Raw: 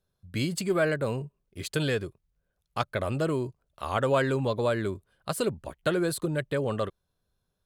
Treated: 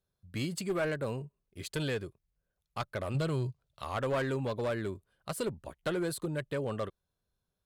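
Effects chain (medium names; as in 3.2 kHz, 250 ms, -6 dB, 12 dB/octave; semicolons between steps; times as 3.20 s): 3.14–3.84 s: graphic EQ 125/250/4000 Hz +10/-5/+8 dB; one-sided clip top -22.5 dBFS; trim -5.5 dB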